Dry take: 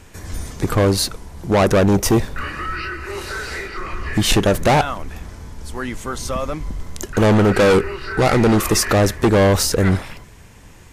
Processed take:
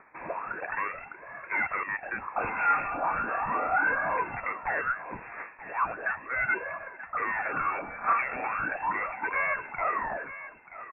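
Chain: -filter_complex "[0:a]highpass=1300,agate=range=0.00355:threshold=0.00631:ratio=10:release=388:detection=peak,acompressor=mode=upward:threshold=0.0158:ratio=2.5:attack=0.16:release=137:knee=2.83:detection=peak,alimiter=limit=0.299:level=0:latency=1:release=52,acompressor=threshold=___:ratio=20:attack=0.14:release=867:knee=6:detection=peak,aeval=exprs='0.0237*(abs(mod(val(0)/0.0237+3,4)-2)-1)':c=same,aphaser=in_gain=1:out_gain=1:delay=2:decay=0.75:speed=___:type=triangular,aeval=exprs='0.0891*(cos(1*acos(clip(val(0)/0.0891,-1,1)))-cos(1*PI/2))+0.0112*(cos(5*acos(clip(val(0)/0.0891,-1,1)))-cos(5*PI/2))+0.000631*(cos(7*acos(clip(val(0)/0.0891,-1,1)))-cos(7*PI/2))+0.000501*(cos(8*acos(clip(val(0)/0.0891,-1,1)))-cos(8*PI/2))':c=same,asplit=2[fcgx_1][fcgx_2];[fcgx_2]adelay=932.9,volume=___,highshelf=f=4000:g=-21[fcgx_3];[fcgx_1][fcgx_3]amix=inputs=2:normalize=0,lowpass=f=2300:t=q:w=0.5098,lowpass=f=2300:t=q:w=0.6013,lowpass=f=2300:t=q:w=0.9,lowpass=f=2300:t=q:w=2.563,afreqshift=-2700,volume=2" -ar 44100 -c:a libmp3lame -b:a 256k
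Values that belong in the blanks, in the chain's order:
0.0398, 0.37, 0.251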